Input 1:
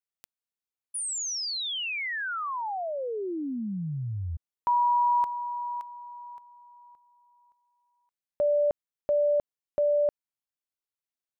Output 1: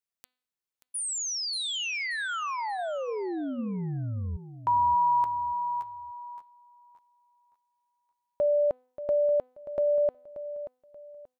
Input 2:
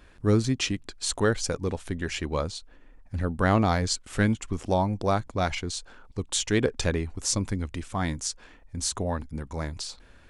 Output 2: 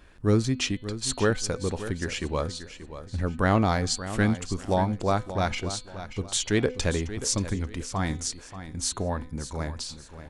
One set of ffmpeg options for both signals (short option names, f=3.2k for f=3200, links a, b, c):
-filter_complex "[0:a]bandreject=f=252.2:t=h:w=4,bandreject=f=504.4:t=h:w=4,bandreject=f=756.6:t=h:w=4,bandreject=f=1.0088k:t=h:w=4,bandreject=f=1.261k:t=h:w=4,bandreject=f=1.5132k:t=h:w=4,bandreject=f=1.7654k:t=h:w=4,bandreject=f=2.0176k:t=h:w=4,bandreject=f=2.2698k:t=h:w=4,bandreject=f=2.522k:t=h:w=4,bandreject=f=2.7742k:t=h:w=4,bandreject=f=3.0264k:t=h:w=4,bandreject=f=3.2786k:t=h:w=4,bandreject=f=3.5308k:t=h:w=4,bandreject=f=3.783k:t=h:w=4,bandreject=f=4.0352k:t=h:w=4,bandreject=f=4.2874k:t=h:w=4,bandreject=f=4.5396k:t=h:w=4,asplit=2[a][b];[b]aecho=0:1:582|1164|1746:0.237|0.0711|0.0213[c];[a][c]amix=inputs=2:normalize=0"